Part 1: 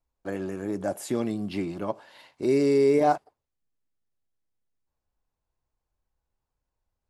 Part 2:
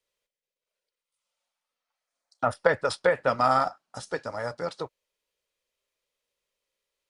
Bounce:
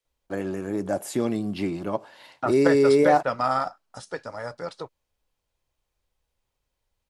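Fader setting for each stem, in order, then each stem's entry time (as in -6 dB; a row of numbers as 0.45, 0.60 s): +2.5, -2.0 dB; 0.05, 0.00 s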